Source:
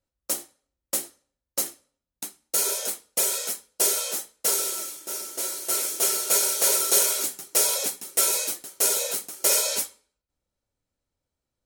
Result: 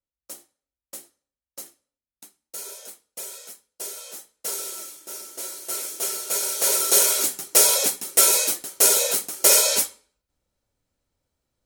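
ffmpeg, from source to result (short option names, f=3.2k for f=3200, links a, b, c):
-af "volume=5.5dB,afade=t=in:st=3.94:d=0.88:silence=0.398107,afade=t=in:st=6.35:d=1.06:silence=0.334965"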